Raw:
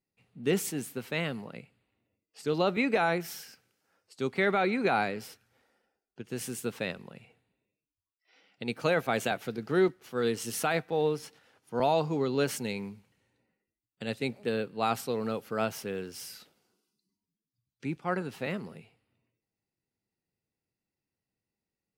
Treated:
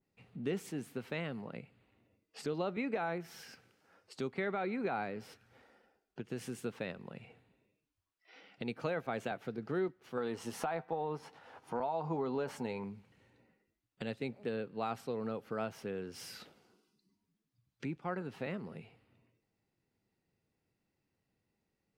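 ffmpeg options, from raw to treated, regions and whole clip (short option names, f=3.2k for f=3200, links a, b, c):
-filter_complex "[0:a]asettb=1/sr,asplit=3[a][b][c];[a]atrim=end=10.174[d];[b]atrim=start=10.17:end=12.84,asetpts=PTS-STARTPTS,afade=t=in:d=0.004:c=qsin,afade=t=out:st=2.666:d=0.004:c=qsin,equalizer=f=880:t=o:w=1:g=10.5,acompressor=threshold=-23dB:ratio=6:attack=3.2:release=140:knee=1:detection=peak,asplit=2[e][f];[f]adelay=12,volume=-10.5dB[g];[e][g]amix=inputs=2:normalize=0,atrim=end_sample=117747[h];[c]atrim=start=12.836[i];[d][h]acrossfade=d=0.004:c1=hsin:c2=qsin[j];[j][i]acrossfade=d=0.004:c1=qsin:c2=hsin,lowpass=f=2.8k:p=1,acompressor=threshold=-54dB:ratio=2,adynamicequalizer=threshold=0.00112:dfrequency=1900:dqfactor=0.7:tfrequency=1900:tqfactor=0.7:attack=5:release=100:ratio=0.375:range=2:mode=cutabove:tftype=highshelf,volume=7.5dB"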